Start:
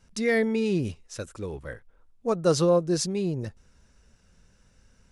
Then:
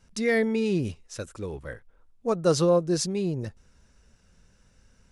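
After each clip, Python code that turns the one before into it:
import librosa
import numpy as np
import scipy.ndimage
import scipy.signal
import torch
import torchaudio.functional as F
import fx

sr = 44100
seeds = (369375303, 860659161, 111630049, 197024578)

y = x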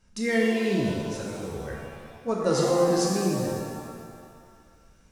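y = fx.rev_shimmer(x, sr, seeds[0], rt60_s=1.9, semitones=7, shimmer_db=-8, drr_db=-2.5)
y = y * librosa.db_to_amplitude(-4.0)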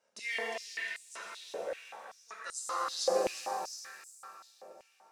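y = fx.high_shelf(x, sr, hz=11000.0, db=-5.0)
y = fx.echo_feedback(y, sr, ms=356, feedback_pct=46, wet_db=-7.0)
y = fx.filter_held_highpass(y, sr, hz=5.2, low_hz=570.0, high_hz=8000.0)
y = y * librosa.db_to_amplitude(-8.5)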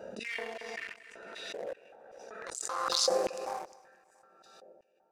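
y = fx.wiener(x, sr, points=41)
y = fx.echo_feedback(y, sr, ms=227, feedback_pct=39, wet_db=-21.0)
y = fx.pre_swell(y, sr, db_per_s=27.0)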